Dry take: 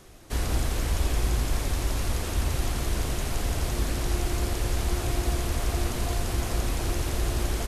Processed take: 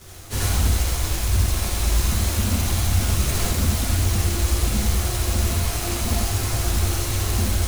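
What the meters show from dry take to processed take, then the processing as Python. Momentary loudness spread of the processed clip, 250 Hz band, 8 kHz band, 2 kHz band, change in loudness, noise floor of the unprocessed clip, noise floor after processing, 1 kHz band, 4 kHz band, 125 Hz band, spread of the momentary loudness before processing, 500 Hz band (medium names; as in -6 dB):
3 LU, +5.0 dB, +9.5 dB, +5.0 dB, +7.0 dB, -32 dBFS, -26 dBFS, +4.0 dB, +7.5 dB, +7.5 dB, 2 LU, +2.0 dB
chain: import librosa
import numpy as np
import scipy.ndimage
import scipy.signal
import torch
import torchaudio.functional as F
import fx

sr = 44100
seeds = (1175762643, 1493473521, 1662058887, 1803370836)

y = fx.rider(x, sr, range_db=10, speed_s=0.5)
y = fx.peak_eq(y, sr, hz=84.0, db=14.0, octaves=0.65)
y = fx.chorus_voices(y, sr, voices=2, hz=0.74, base_ms=13, depth_ms=3.9, mix_pct=65)
y = fx.high_shelf(y, sr, hz=2800.0, db=8.0)
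y = 10.0 ** (-17.5 / 20.0) * (np.abs((y / 10.0 ** (-17.5 / 20.0) + 3.0) % 4.0 - 2.0) - 1.0)
y = fx.quant_companded(y, sr, bits=4)
y = fx.rev_gated(y, sr, seeds[0], gate_ms=110, shape='rising', drr_db=-2.0)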